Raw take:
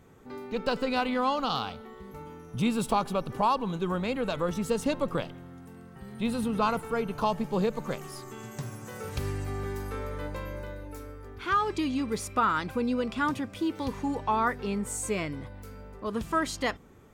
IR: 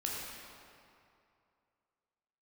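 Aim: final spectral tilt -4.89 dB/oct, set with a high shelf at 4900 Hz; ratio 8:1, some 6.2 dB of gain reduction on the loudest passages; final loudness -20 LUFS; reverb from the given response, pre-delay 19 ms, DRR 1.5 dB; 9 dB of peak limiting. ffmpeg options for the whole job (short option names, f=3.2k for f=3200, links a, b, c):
-filter_complex "[0:a]highshelf=f=4.9k:g=4.5,acompressor=threshold=-27dB:ratio=8,alimiter=level_in=2.5dB:limit=-24dB:level=0:latency=1,volume=-2.5dB,asplit=2[a][b];[1:a]atrim=start_sample=2205,adelay=19[c];[b][c]afir=irnorm=-1:irlink=0,volume=-5dB[d];[a][d]amix=inputs=2:normalize=0,volume=14.5dB"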